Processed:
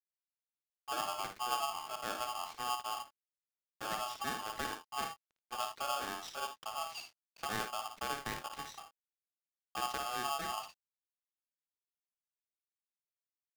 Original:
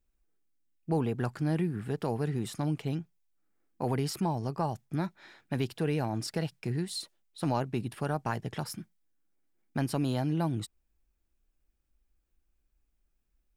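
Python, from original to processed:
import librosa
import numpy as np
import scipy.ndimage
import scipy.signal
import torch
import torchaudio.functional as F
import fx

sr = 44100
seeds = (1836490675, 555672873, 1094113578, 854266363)

p1 = fx.pitch_glide(x, sr, semitones=-4.0, runs='ending unshifted')
p2 = np.where(np.abs(p1) >= 10.0 ** (-44.0 / 20.0), p1, 0.0)
p3 = scipy.signal.sosfilt(scipy.signal.butter(6, 5500.0, 'lowpass', fs=sr, output='sos'), p2)
p4 = p3 + fx.room_early_taps(p3, sr, ms=(55, 79), db=(-6.5, -15.0), dry=0)
p5 = p4 * np.sign(np.sin(2.0 * np.pi * 980.0 * np.arange(len(p4)) / sr))
y = F.gain(torch.from_numpy(p5), -7.5).numpy()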